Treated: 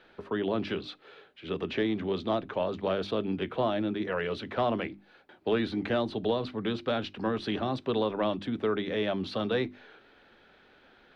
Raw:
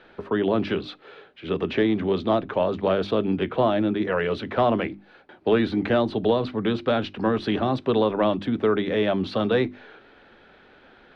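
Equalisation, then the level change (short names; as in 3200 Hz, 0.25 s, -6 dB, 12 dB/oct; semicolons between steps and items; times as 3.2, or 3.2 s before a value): high shelf 3700 Hz +8 dB; -7.5 dB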